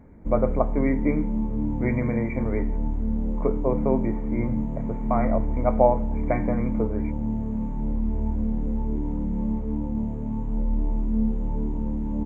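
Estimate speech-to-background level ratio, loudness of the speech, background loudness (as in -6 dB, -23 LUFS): 1.0 dB, -27.5 LUFS, -28.5 LUFS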